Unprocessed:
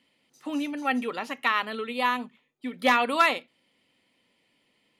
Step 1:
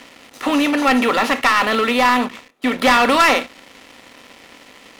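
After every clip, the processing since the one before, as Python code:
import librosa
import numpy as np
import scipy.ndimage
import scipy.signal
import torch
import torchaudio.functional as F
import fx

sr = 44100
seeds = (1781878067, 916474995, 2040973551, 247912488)

y = fx.bin_compress(x, sr, power=0.6)
y = fx.leveller(y, sr, passes=3)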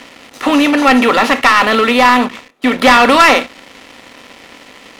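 y = fx.high_shelf(x, sr, hz=9300.0, db=-5.0)
y = y * librosa.db_to_amplitude(6.0)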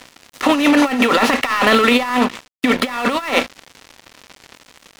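y = fx.over_compress(x, sr, threshold_db=-12.0, ratio=-0.5)
y = np.sign(y) * np.maximum(np.abs(y) - 10.0 ** (-27.0 / 20.0), 0.0)
y = y * librosa.db_to_amplitude(-1.0)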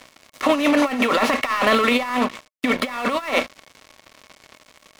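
y = fx.small_body(x, sr, hz=(610.0, 1100.0, 2200.0), ring_ms=45, db=8)
y = y * librosa.db_to_amplitude(-5.5)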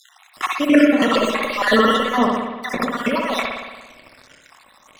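y = fx.spec_dropout(x, sr, seeds[0], share_pct=59)
y = fx.rev_spring(y, sr, rt60_s=1.2, pass_ms=(58,), chirp_ms=65, drr_db=0.5)
y = y * librosa.db_to_amplitude(3.5)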